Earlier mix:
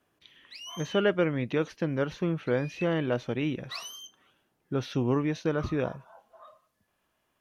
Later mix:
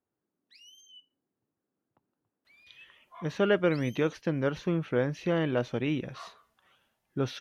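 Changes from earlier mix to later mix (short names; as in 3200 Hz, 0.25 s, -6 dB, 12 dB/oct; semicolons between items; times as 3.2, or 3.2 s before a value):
speech: entry +2.45 s; background -11.5 dB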